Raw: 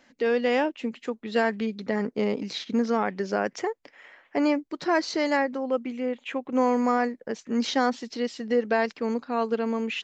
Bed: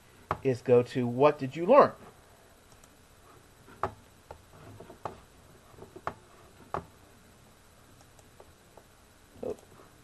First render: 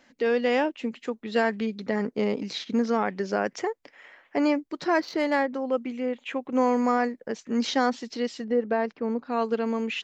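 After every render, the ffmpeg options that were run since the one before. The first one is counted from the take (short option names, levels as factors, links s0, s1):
-filter_complex "[0:a]asettb=1/sr,asplit=3[s0][s1][s2];[s0]atrim=end=5.004[s3];[s1]atrim=start=5:end=5.54,asetpts=PTS-STARTPTS,afade=t=in:d=0.004:c=qsin,afade=t=out:st=0.536:d=0.004:c=qsin,adynamicsmooth=sensitivity=2:basefreq=2900[s4];[s2]atrim=start=5.536[s5];[s3][s4]acrossfade=d=0.004:c1=hsin:c2=qsin[s6];[s6][s5]acrossfade=d=0.004:c1=qsin:c2=hsin,asettb=1/sr,asplit=3[s7][s8][s9];[s7]atrim=end=8.444[s10];[s8]atrim=start=8.44:end=9.25,asetpts=PTS-STARTPTS,afade=t=in:d=0.004:c=qsin,afade=t=out:st=0.806:d=0.004:c=qsin,lowpass=f=1000:p=1[s11];[s9]atrim=start=9.246[s12];[s10][s11]acrossfade=d=0.004:c1=hsin:c2=qsin[s13];[s13][s12]acrossfade=d=0.004:c1=qsin:c2=hsin"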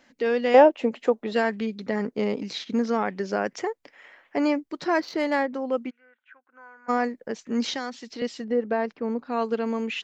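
-filter_complex "[0:a]asettb=1/sr,asplit=3[s0][s1][s2];[s0]atrim=end=0.544[s3];[s1]atrim=start=0.54:end=1.33,asetpts=PTS-STARTPTS,afade=t=in:d=0.004:c=qsin,afade=t=out:st=0.786:d=0.004:c=qsin,equalizer=f=640:t=o:w=1.6:g=14[s4];[s2]atrim=start=1.326[s5];[s3][s4]acrossfade=d=0.004:c1=hsin:c2=qsin[s6];[s6][s5]acrossfade=d=0.004:c1=qsin:c2=hsin,asplit=3[s7][s8][s9];[s7]afade=t=out:st=5.89:d=0.02[s10];[s8]bandpass=f=1500:t=q:w=15,afade=t=in:st=5.89:d=0.02,afade=t=out:st=6.88:d=0.02[s11];[s9]afade=t=in:st=6.88:d=0.02[s12];[s10][s11][s12]amix=inputs=3:normalize=0,asettb=1/sr,asplit=3[s13][s14][s15];[s13]atrim=end=7.744[s16];[s14]atrim=start=7.74:end=8.22,asetpts=PTS-STARTPTS,afade=t=in:d=0.004:c=qsin,afade=t=out:st=0.476:d=0.004:c=qsin,acrossover=split=520|1500|3000[s17][s18][s19][s20];[s17]acompressor=threshold=0.0126:ratio=3[s21];[s18]acompressor=threshold=0.0112:ratio=3[s22];[s19]acompressor=threshold=0.0126:ratio=3[s23];[s20]acompressor=threshold=0.00562:ratio=3[s24];[s21][s22][s23][s24]amix=inputs=4:normalize=0[s25];[s15]atrim=start=8.216[s26];[s16][s25]acrossfade=d=0.004:c1=hsin:c2=qsin[s27];[s27][s26]acrossfade=d=0.004:c1=qsin:c2=hsin"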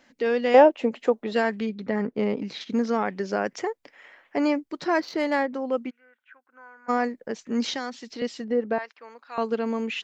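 -filter_complex "[0:a]asettb=1/sr,asplit=3[s0][s1][s2];[s0]atrim=end=1.694[s3];[s1]atrim=start=1.69:end=2.61,asetpts=PTS-STARTPTS,afade=t=in:d=0.004:c=qsin,afade=t=out:st=0.916:d=0.004:c=qsin,bass=f=250:g=2,treble=f=4000:g=-10[s4];[s2]atrim=start=2.606[s5];[s3][s4]acrossfade=d=0.004:c1=hsin:c2=qsin[s6];[s6][s5]acrossfade=d=0.004:c1=qsin:c2=hsin,asettb=1/sr,asplit=3[s7][s8][s9];[s7]atrim=end=8.784[s10];[s8]atrim=start=8.78:end=9.38,asetpts=PTS-STARTPTS,afade=t=in:d=0.004:c=qsin,afade=t=out:st=0.596:d=0.004:c=qsin,highpass=1200[s11];[s9]atrim=start=9.376[s12];[s10][s11]acrossfade=d=0.004:c1=hsin:c2=qsin[s13];[s13][s12]acrossfade=d=0.004:c1=qsin:c2=hsin"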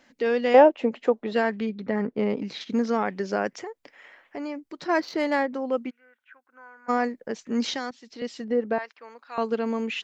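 -filter_complex "[0:a]asettb=1/sr,asplit=3[s0][s1][s2];[s0]atrim=end=0.534[s3];[s1]atrim=start=0.53:end=2.3,asetpts=PTS-STARTPTS,afade=t=in:d=0.004:c=qsin,afade=t=out:st=1.766:d=0.004:c=qsin,highshelf=f=6600:g=-10[s4];[s2]atrim=start=2.296[s5];[s3][s4]acrossfade=d=0.004:c1=hsin:c2=qsin[s6];[s6][s5]acrossfade=d=0.004:c1=qsin:c2=hsin,asplit=3[s7][s8][s9];[s7]afade=t=out:st=3.5:d=0.02[s10];[s8]acompressor=threshold=0.0126:ratio=2:attack=3.2:release=140:knee=1:detection=peak,afade=t=in:st=3.5:d=0.02,afade=t=out:st=4.88:d=0.02[s11];[s9]afade=t=in:st=4.88:d=0.02[s12];[s10][s11][s12]amix=inputs=3:normalize=0,asplit=2[s13][s14];[s13]atrim=end=7.91,asetpts=PTS-STARTPTS,afade=t=out:st=7.906:d=0.004:c=hsin:silence=0.237137[s15];[s14]atrim=start=7.91,asetpts=PTS-STARTPTS,afade=t=in:d=0.58:silence=0.237137[s16];[s15][s16]concat=n=2:v=0:a=1"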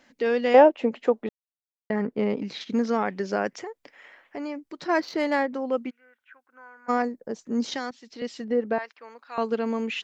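-filter_complex "[0:a]asettb=1/sr,asplit=3[s0][s1][s2];[s0]atrim=end=7.024[s3];[s1]atrim=start=7.02:end=7.72,asetpts=PTS-STARTPTS,afade=t=in:d=0.004:c=qsin,afade=t=out:st=0.696:d=0.004:c=qsin,equalizer=f=2400:w=0.78:g=-12[s4];[s2]atrim=start=7.716[s5];[s3][s4]acrossfade=d=0.004:c1=hsin:c2=qsin[s6];[s6][s5]acrossfade=d=0.004:c1=qsin:c2=hsin,asplit=3[s7][s8][s9];[s7]atrim=end=1.29,asetpts=PTS-STARTPTS,afade=t=out:st=1.286:d=0.004:c=hsin[s10];[s8]atrim=start=1.29:end=1.9,asetpts=PTS-STARTPTS,volume=0[s11];[s9]atrim=start=1.9,asetpts=PTS-STARTPTS,afade=t=in:d=0.004:c=hsin[s12];[s10][s11][s12]concat=n=3:v=0:a=1"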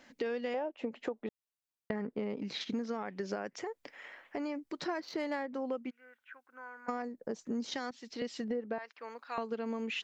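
-af "alimiter=limit=0.178:level=0:latency=1:release=319,acompressor=threshold=0.02:ratio=5"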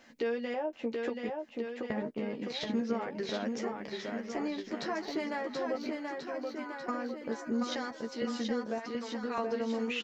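-filter_complex "[0:a]asplit=2[s0][s1];[s1]adelay=13,volume=0.562[s2];[s0][s2]amix=inputs=2:normalize=0,aecho=1:1:730|1387|1978|2510|2989:0.631|0.398|0.251|0.158|0.1"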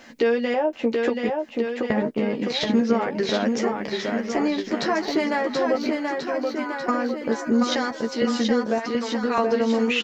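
-af "volume=3.98"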